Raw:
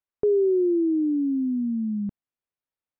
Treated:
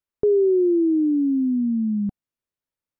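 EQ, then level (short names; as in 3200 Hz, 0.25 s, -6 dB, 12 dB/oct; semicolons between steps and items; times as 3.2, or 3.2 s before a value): low shelf 410 Hz +5.5 dB; notch 750 Hz; 0.0 dB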